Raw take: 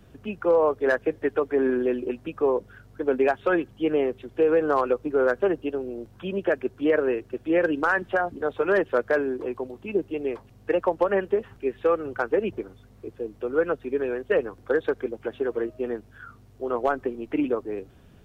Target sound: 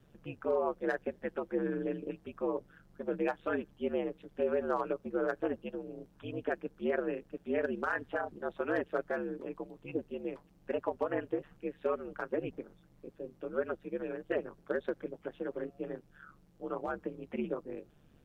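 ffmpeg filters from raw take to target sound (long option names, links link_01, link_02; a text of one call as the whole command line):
ffmpeg -i in.wav -af "aeval=exprs='val(0)*sin(2*PI*73*n/s)':channel_layout=same,volume=-8dB" out.wav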